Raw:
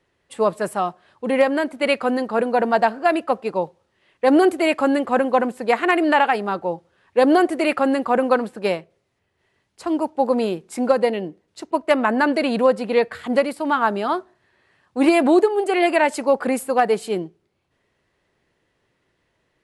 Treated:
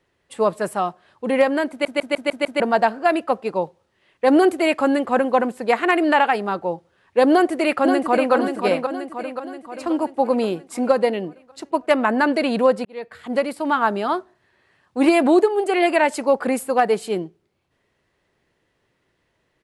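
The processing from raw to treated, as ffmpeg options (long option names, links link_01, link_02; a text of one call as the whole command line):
ffmpeg -i in.wav -filter_complex "[0:a]asplit=2[link_01][link_02];[link_02]afade=type=in:start_time=7.31:duration=0.01,afade=type=out:start_time=8.33:duration=0.01,aecho=0:1:530|1060|1590|2120|2650|3180|3710:0.501187|0.275653|0.151609|0.083385|0.0458618|0.025224|0.0138732[link_03];[link_01][link_03]amix=inputs=2:normalize=0,asplit=8[link_04][link_05][link_06][link_07][link_08][link_09][link_10][link_11];[link_04]atrim=end=1.852[link_12];[link_05]atrim=start=1.698:end=1.852[link_13];[link_06]atrim=start=1.698:end=1.852[link_14];[link_07]atrim=start=1.698:end=1.852[link_15];[link_08]atrim=start=1.698:end=1.852[link_16];[link_09]atrim=start=1.698:end=1.852[link_17];[link_10]atrim=start=2.598:end=12.85,asetpts=PTS-STARTPTS,afade=type=out:start_time=10.248:duration=0.004:curve=hsin[link_18];[link_11]atrim=start=12.85,asetpts=PTS-STARTPTS,afade=type=in:duration=0.73[link_19];[link_12][link_13]acrossfade=duration=0.004:curve1=hsin:curve2=hsin[link_20];[link_20][link_14]acrossfade=duration=0.004:curve1=hsin:curve2=hsin[link_21];[link_21][link_15]acrossfade=duration=0.004:curve1=hsin:curve2=hsin[link_22];[link_22][link_16]acrossfade=duration=0.004:curve1=hsin:curve2=hsin[link_23];[link_23][link_17]acrossfade=duration=0.004:curve1=hsin:curve2=hsin[link_24];[link_18][link_19]concat=n=2:v=0:a=1[link_25];[link_24][link_25]acrossfade=duration=0.004:curve1=hsin:curve2=hsin" out.wav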